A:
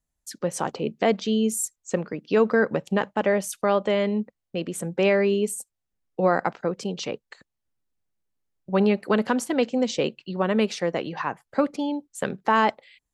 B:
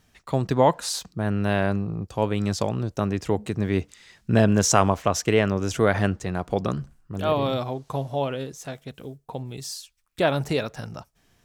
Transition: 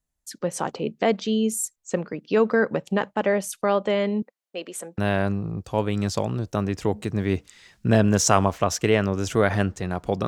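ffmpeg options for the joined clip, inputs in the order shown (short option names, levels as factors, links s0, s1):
-filter_complex "[0:a]asettb=1/sr,asplit=3[s0][s1][s2];[s0]atrim=end=4.224[s3];[s1]atrim=start=4.22:end=4.98,asetpts=PTS-STARTPTS,afade=t=in:d=0.004:c=qsin,afade=t=out:st=0.756:d=0.004:c=qsin,highpass=470[s4];[s2]atrim=start=4.976[s5];[s3][s4]acrossfade=d=0.004:c1=hsin:c2=qsin[s6];[s6][s5]acrossfade=d=0.004:c1=qsin:c2=hsin,apad=whole_dur=10.27,atrim=end=10.27,atrim=end=4.982[s7];[1:a]atrim=start=1.418:end=6.71[s8];[s7][s8]acrossfade=d=0.004:c1=hsin:c2=hsin"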